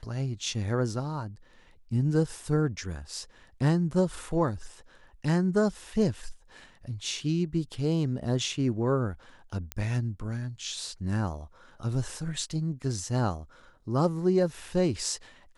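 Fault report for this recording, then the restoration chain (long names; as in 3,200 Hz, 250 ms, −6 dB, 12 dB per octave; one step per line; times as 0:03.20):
0:09.72: click −17 dBFS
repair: click removal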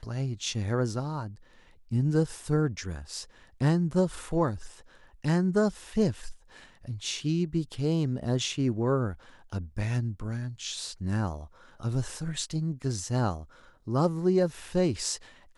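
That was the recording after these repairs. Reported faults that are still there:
none of them is left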